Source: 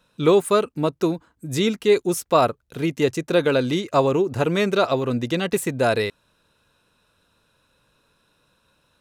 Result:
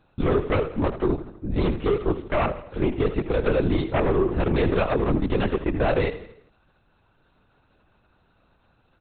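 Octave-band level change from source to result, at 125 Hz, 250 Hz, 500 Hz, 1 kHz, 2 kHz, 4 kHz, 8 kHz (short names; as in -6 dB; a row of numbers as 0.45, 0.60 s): +1.5 dB, -1.5 dB, -4.0 dB, -5.0 dB, -3.5 dB, -9.5 dB, under -40 dB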